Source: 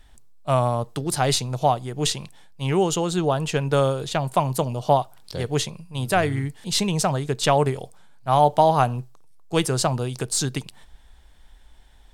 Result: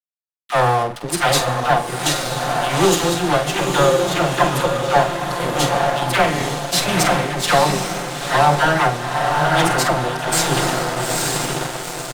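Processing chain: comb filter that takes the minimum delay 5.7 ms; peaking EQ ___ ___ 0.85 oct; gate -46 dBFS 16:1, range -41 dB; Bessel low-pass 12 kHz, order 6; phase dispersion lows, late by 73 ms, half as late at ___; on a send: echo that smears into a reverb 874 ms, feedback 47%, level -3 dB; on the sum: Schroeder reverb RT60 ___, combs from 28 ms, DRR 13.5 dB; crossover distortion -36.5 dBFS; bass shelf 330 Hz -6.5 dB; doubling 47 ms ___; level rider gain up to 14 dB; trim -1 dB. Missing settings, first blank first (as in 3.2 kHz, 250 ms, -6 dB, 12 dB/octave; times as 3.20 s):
2 kHz, +2 dB, 760 Hz, 1.5 s, -9.5 dB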